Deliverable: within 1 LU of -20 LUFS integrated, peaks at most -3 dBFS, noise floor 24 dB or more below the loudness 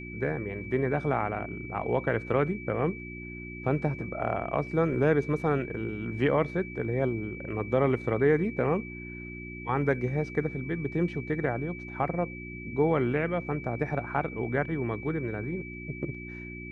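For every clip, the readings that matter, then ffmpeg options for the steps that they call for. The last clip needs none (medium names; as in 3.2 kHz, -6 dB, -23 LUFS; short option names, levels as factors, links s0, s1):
hum 60 Hz; highest harmonic 360 Hz; hum level -39 dBFS; steady tone 2.3 kHz; tone level -42 dBFS; loudness -30.0 LUFS; peak level -11.5 dBFS; loudness target -20.0 LUFS
-> -af "bandreject=f=60:t=h:w=4,bandreject=f=120:t=h:w=4,bandreject=f=180:t=h:w=4,bandreject=f=240:t=h:w=4,bandreject=f=300:t=h:w=4,bandreject=f=360:t=h:w=4"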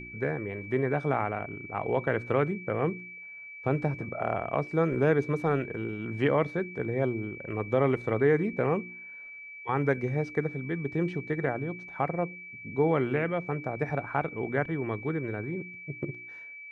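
hum not found; steady tone 2.3 kHz; tone level -42 dBFS
-> -af "bandreject=f=2300:w=30"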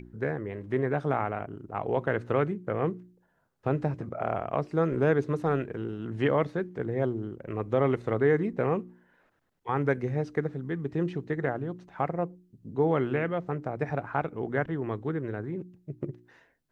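steady tone not found; loudness -30.0 LUFS; peak level -11.5 dBFS; loudness target -20.0 LUFS
-> -af "volume=3.16,alimiter=limit=0.708:level=0:latency=1"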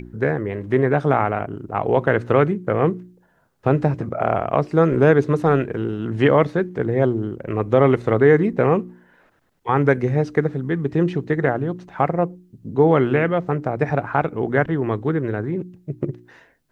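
loudness -20.0 LUFS; peak level -3.0 dBFS; noise floor -60 dBFS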